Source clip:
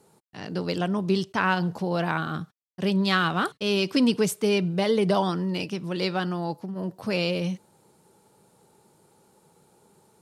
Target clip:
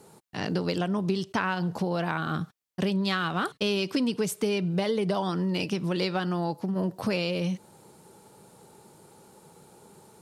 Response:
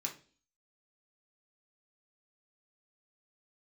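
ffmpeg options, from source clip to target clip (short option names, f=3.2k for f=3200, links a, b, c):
-af "acompressor=threshold=-31dB:ratio=6,volume=6.5dB"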